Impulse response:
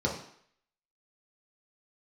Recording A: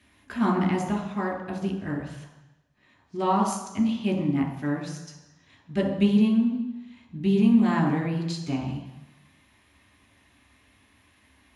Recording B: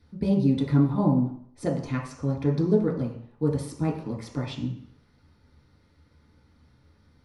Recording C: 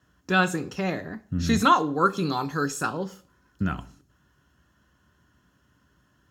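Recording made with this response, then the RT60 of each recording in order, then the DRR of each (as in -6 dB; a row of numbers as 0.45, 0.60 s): B; 1.0, 0.60, 0.45 s; 0.5, -3.5, 11.0 dB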